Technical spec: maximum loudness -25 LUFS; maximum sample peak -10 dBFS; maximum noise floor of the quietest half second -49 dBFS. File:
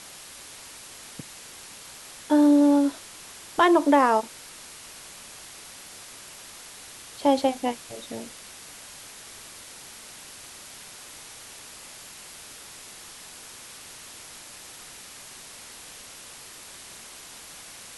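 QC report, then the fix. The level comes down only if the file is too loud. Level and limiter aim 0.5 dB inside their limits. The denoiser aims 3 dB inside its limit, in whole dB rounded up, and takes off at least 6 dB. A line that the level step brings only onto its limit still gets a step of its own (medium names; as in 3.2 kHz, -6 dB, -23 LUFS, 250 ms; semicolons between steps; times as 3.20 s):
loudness -22.0 LUFS: fail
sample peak -7.0 dBFS: fail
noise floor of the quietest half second -44 dBFS: fail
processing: noise reduction 6 dB, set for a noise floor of -44 dBFS; trim -3.5 dB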